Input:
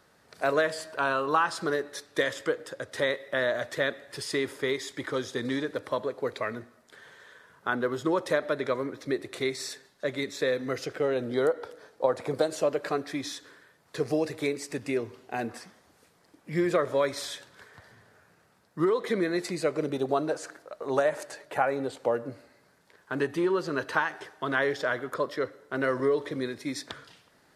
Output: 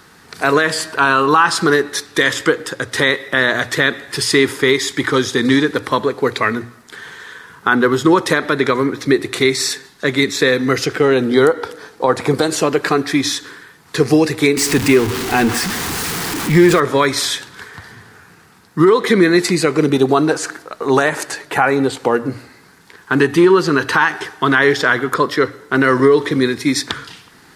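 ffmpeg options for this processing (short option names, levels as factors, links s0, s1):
-filter_complex "[0:a]asettb=1/sr,asplit=3[s0][s1][s2];[s0]atrim=end=14.574[s3];[s1]atrim=start=14.57:end=16.8,asetpts=PTS-STARTPTS,afade=t=in:d=0.004:c=qsin,afade=t=out:st=2.226:d=0.004:c=qsin,aeval=exprs='val(0)+0.5*0.0211*sgn(val(0))':c=same[s4];[s2]atrim=start=16.796[s5];[s3][s4]acrossfade=d=0.004:c1=hsin:c2=qsin[s6];[s6][s5]acrossfade=d=0.004:c1=qsin:c2=hsin,equalizer=f=590:t=o:w=0.41:g=-15,bandreject=f=60:t=h:w=6,bandreject=f=120:t=h:w=6,alimiter=level_in=8.91:limit=0.891:release=50:level=0:latency=1,volume=0.891"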